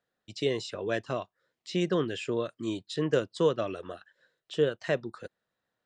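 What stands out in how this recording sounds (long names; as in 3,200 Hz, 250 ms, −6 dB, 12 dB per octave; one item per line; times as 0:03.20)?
background noise floor −86 dBFS
spectral slope −4.5 dB per octave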